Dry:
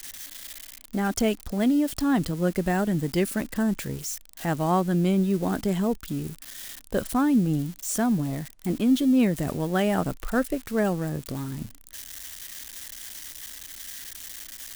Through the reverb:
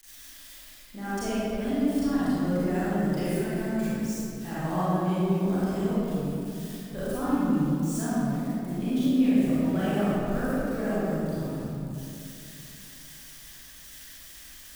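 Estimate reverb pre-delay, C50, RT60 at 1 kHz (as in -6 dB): 30 ms, -7.5 dB, 2.6 s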